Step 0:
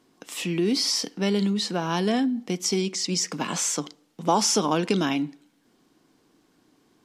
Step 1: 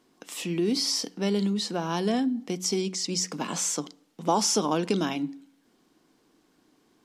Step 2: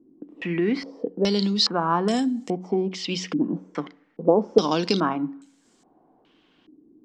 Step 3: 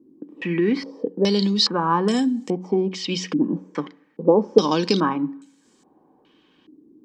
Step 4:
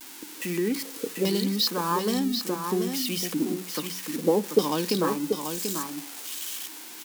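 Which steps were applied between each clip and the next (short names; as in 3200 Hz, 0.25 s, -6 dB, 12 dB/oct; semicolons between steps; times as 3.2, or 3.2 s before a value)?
bell 120 Hz -5.5 dB 0.55 oct; de-hum 91.98 Hz, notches 3; dynamic EQ 2100 Hz, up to -4 dB, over -44 dBFS, Q 0.79; gain -1.5 dB
stepped low-pass 2.4 Hz 310–7600 Hz; gain +2.5 dB
notch comb 690 Hz; gain +3 dB
switching spikes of -17.5 dBFS; vibrato 0.62 Hz 51 cents; echo 0.737 s -6.5 dB; gain -6.5 dB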